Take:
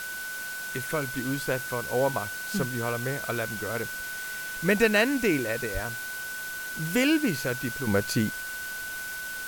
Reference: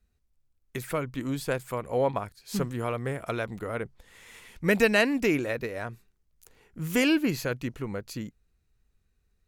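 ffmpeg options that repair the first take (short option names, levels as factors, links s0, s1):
-filter_complex "[0:a]bandreject=f=1500:w=30,asplit=3[s0][s1][s2];[s0]afade=t=out:st=5.73:d=0.02[s3];[s1]highpass=f=140:w=0.5412,highpass=f=140:w=1.3066,afade=t=in:st=5.73:d=0.02,afade=t=out:st=5.85:d=0.02[s4];[s2]afade=t=in:st=5.85:d=0.02[s5];[s3][s4][s5]amix=inputs=3:normalize=0,afwtdn=0.01,asetnsamples=n=441:p=0,asendcmd='7.87 volume volume -10dB',volume=1"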